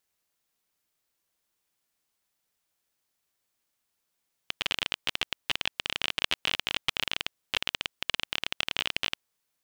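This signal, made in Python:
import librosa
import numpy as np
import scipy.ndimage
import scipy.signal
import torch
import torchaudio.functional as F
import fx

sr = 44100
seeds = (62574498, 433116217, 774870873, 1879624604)

y = fx.geiger_clicks(sr, seeds[0], length_s=4.74, per_s=26.0, level_db=-9.5)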